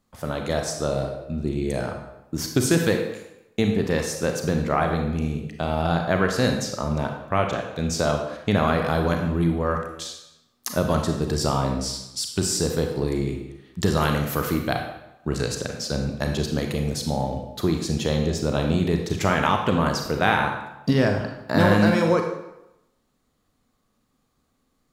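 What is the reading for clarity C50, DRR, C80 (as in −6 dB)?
5.0 dB, 3.0 dB, 7.5 dB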